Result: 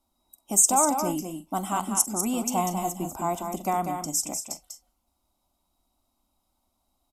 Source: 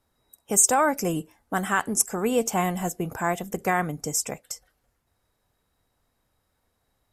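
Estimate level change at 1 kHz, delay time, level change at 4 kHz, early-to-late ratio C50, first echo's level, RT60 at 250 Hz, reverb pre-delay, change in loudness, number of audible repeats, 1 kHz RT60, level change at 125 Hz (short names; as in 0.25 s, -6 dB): 0.0 dB, 46 ms, -1.0 dB, none, -18.0 dB, none, none, -1.0 dB, 3, none, -4.0 dB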